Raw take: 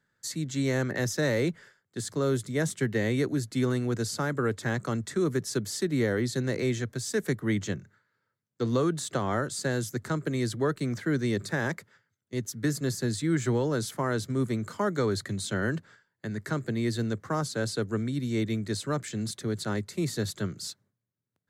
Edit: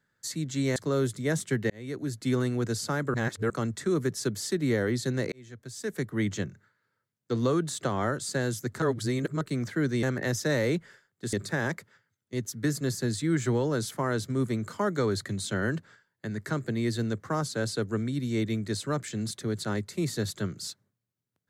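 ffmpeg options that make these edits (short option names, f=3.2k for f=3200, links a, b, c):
-filter_complex "[0:a]asplit=10[a][b][c][d][e][f][g][h][i][j];[a]atrim=end=0.762[k];[b]atrim=start=2.058:end=3,asetpts=PTS-STARTPTS,afade=t=out:st=0.938:d=0.004:c=hsin[l];[c]atrim=start=3:end=4.442,asetpts=PTS-STARTPTS,afade=t=in:d=0.57[m];[d]atrim=start=4.438:end=4.802,asetpts=PTS-STARTPTS,areverse[n];[e]atrim=start=4.798:end=6.62,asetpts=PTS-STARTPTS,afade=t=out:st=1.818:d=0.004:c=hsin[o];[f]atrim=start=6.62:end=10.122,asetpts=PTS-STARTPTS,afade=t=in:d=0.98[p];[g]atrim=start=10.118:end=10.712,asetpts=PTS-STARTPTS,areverse[q];[h]atrim=start=10.708:end=11.332[r];[i]atrim=start=0.758:end=2.062[s];[j]atrim=start=11.328[t];[l][m]concat=n=2:v=0:a=1[u];[k][u]acrossfade=d=0.004:c1=hsin:c2=hsin[v];[v][n]acrossfade=d=0.004:c1=hsin:c2=hsin[w];[o][p]concat=n=2:v=0:a=1[x];[w][x]acrossfade=d=0.004:c1=hsin:c2=hsin[y];[y][q]acrossfade=d=0.004:c1=hsin:c2=hsin[z];[z][r]acrossfade=d=0.004:c1=hsin:c2=hsin[aa];[aa][s]acrossfade=d=0.004:c1=hsin:c2=hsin[ab];[ab][t]acrossfade=d=0.004:c1=hsin:c2=hsin"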